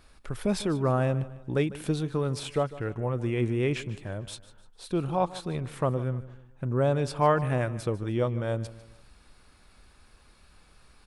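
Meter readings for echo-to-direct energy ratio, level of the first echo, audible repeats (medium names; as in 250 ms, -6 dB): -16.5 dB, -17.0 dB, 3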